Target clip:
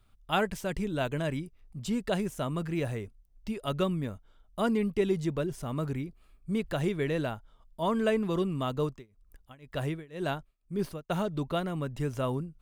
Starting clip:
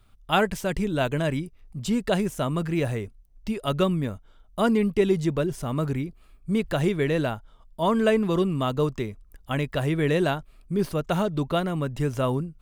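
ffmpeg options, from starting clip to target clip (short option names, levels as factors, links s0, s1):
-filter_complex "[0:a]asettb=1/sr,asplit=3[s0][s1][s2];[s0]atrim=end=8.834[s3];[s1]atrim=start=8.83:end=11.1,asetpts=PTS-STARTPTS,afade=t=in:d=0.004:c=qsin,afade=t=out:st=2.266:d=0.004:c=qsin,tremolo=f=2:d=0.96[s4];[s2]atrim=start=11.096[s5];[s3][s4]acrossfade=d=0.004:c1=hsin:c2=qsin[s6];[s6][s5]acrossfade=d=0.004:c1=qsin:c2=hsin,volume=0.501"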